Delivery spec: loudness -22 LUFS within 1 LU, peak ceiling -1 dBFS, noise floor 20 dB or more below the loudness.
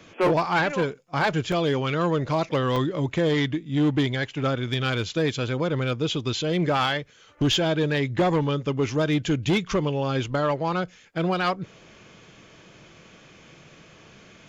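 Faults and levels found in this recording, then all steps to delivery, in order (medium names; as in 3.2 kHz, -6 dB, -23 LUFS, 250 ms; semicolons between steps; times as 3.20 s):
clipped samples 0.4%; clipping level -16.0 dBFS; dropouts 2; longest dropout 2.9 ms; loudness -24.5 LUFS; peak level -16.0 dBFS; loudness target -22.0 LUFS
-> clip repair -16 dBFS; interpolate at 1.52/2.76 s, 2.9 ms; trim +2.5 dB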